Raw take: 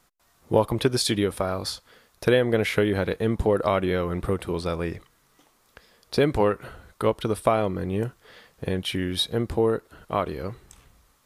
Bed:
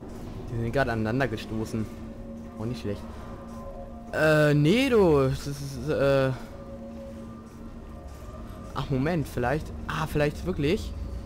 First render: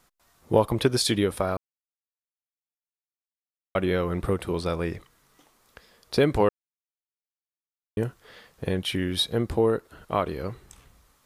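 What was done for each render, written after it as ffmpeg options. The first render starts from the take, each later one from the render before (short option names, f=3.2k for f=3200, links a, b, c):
-filter_complex "[0:a]asplit=5[a][b][c][d][e];[a]atrim=end=1.57,asetpts=PTS-STARTPTS,afade=t=out:st=1.566:d=0.004:c=hsin[f];[b]atrim=start=1.57:end=3.75,asetpts=PTS-STARTPTS,volume=0[g];[c]atrim=start=3.75:end=6.49,asetpts=PTS-STARTPTS,afade=t=in:d=0.004:c=hsin,afade=t=out:st=2.736:d=0.004:c=hsin[h];[d]atrim=start=6.49:end=7.97,asetpts=PTS-STARTPTS,volume=0[i];[e]atrim=start=7.97,asetpts=PTS-STARTPTS,afade=t=in:d=0.004:c=hsin[j];[f][g][h][i][j]concat=n=5:v=0:a=1"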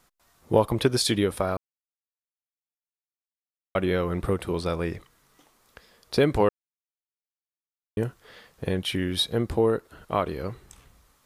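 -af anull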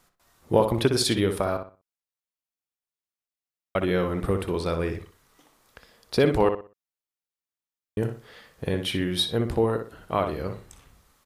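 -filter_complex "[0:a]asplit=2[a][b];[b]adelay=61,lowpass=f=3.4k:p=1,volume=-7dB,asplit=2[c][d];[d]adelay=61,lowpass=f=3.4k:p=1,volume=0.29,asplit=2[e][f];[f]adelay=61,lowpass=f=3.4k:p=1,volume=0.29,asplit=2[g][h];[h]adelay=61,lowpass=f=3.4k:p=1,volume=0.29[i];[a][c][e][g][i]amix=inputs=5:normalize=0"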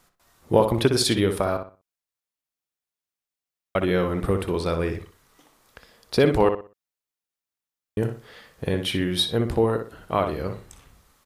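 -af "volume=2dB"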